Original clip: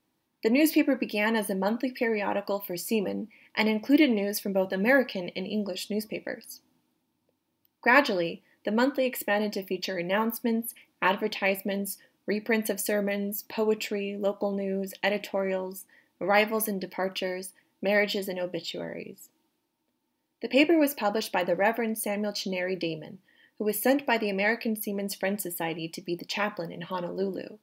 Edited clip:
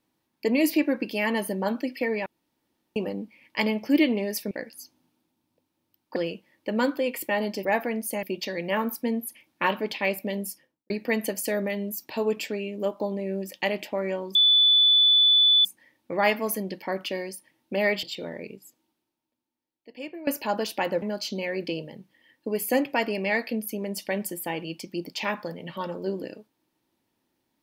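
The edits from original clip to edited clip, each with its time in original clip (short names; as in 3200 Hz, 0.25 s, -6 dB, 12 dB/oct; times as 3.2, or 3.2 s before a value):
2.26–2.96 room tone
4.51–6.22 cut
7.87–8.15 cut
11.87–12.31 studio fade out
15.76 add tone 3480 Hz -15 dBFS 1.30 s
18.14–18.59 cut
19.1–20.83 fade out quadratic, to -17.5 dB
21.58–22.16 move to 9.64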